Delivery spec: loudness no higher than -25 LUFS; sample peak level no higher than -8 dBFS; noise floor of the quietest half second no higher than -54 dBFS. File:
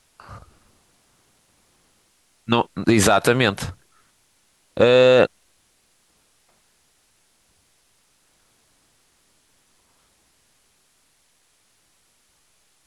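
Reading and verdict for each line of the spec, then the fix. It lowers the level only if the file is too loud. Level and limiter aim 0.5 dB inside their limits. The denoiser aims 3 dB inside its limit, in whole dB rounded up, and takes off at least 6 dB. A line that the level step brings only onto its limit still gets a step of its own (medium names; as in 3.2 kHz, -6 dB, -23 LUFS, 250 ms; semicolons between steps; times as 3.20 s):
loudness -17.5 LUFS: fail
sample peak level -5.0 dBFS: fail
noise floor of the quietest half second -63 dBFS: pass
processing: trim -8 dB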